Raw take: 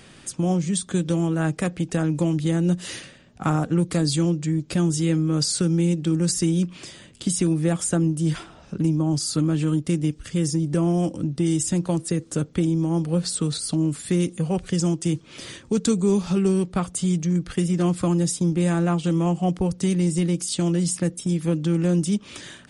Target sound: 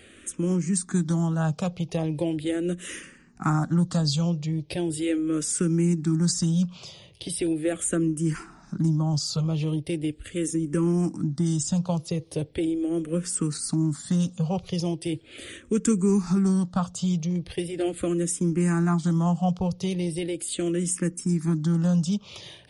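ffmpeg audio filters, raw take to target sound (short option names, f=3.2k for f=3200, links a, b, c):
-filter_complex "[0:a]asplit=2[a][b];[b]afreqshift=-0.39[c];[a][c]amix=inputs=2:normalize=1"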